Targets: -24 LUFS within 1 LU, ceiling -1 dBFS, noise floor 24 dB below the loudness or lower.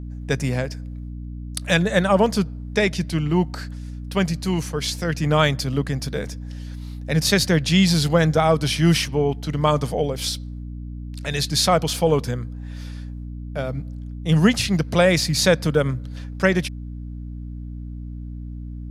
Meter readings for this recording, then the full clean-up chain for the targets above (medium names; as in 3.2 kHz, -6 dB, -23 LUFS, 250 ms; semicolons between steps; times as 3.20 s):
hum 60 Hz; highest harmonic 300 Hz; hum level -30 dBFS; loudness -21.0 LUFS; peak level -2.0 dBFS; loudness target -24.0 LUFS
-> de-hum 60 Hz, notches 5; trim -3 dB